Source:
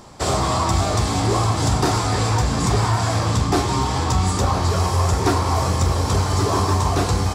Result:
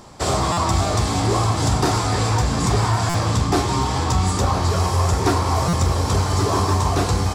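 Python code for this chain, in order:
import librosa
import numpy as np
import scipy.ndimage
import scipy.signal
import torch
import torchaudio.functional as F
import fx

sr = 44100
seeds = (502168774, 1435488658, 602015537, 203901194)

y = fx.buffer_glitch(x, sr, at_s=(0.52, 3.09, 5.68), block=256, repeats=8)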